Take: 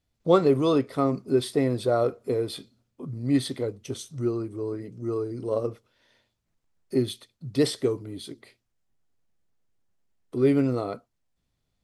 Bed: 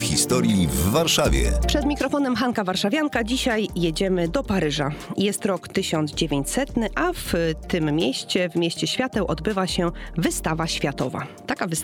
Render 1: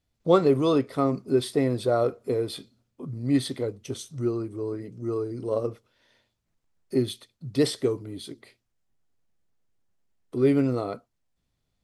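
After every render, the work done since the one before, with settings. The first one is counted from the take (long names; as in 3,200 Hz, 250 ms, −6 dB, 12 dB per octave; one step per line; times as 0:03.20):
no processing that can be heard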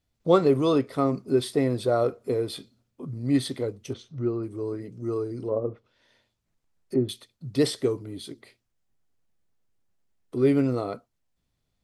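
0:03.93–0:04.43: high-frequency loss of the air 230 metres
0:05.42–0:07.09: treble cut that deepens with the level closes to 910 Hz, closed at −24 dBFS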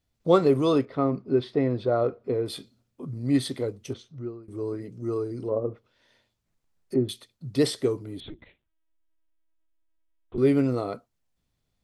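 0:00.85–0:02.46: high-frequency loss of the air 260 metres
0:03.89–0:04.48: fade out, to −23 dB
0:08.20–0:10.38: linear-prediction vocoder at 8 kHz pitch kept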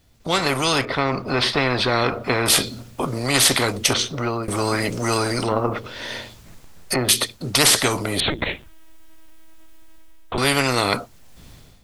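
automatic gain control gain up to 16 dB
every bin compressed towards the loudest bin 4 to 1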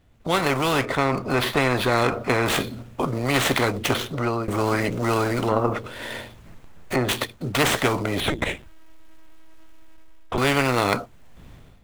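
running median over 9 samples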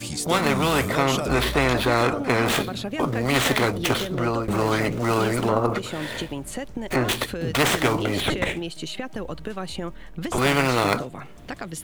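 mix in bed −9 dB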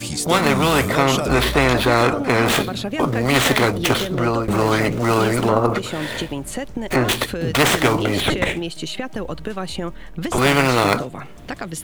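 level +4.5 dB
brickwall limiter −2 dBFS, peak gain reduction 1.5 dB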